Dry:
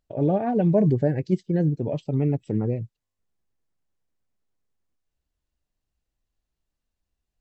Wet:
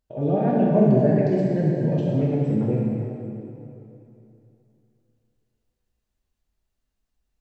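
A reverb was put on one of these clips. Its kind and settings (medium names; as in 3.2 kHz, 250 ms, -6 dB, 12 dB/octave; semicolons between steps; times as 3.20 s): plate-style reverb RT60 2.9 s, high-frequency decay 0.8×, DRR -5 dB; trim -3 dB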